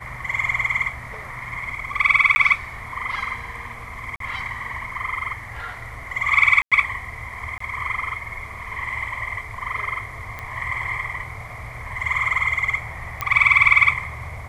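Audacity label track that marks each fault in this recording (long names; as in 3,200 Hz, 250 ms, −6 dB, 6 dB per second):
2.350000	2.360000	drop-out 10 ms
4.160000	4.200000	drop-out 43 ms
6.620000	6.720000	drop-out 96 ms
7.580000	7.600000	drop-out 24 ms
10.390000	10.390000	click −18 dBFS
13.210000	13.210000	click −9 dBFS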